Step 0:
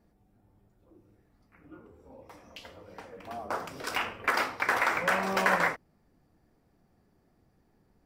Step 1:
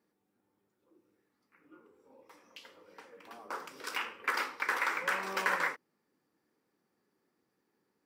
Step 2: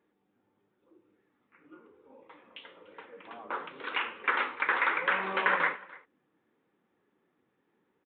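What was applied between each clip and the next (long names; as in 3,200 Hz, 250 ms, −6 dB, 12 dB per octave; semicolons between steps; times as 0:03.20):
high-pass filter 340 Hz 12 dB per octave; parametric band 680 Hz −13 dB 0.4 octaves; level −4 dB
downsampling to 8,000 Hz; single-tap delay 293 ms −22 dB; flanger 1 Hz, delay 1.8 ms, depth 7.3 ms, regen −57%; level +8.5 dB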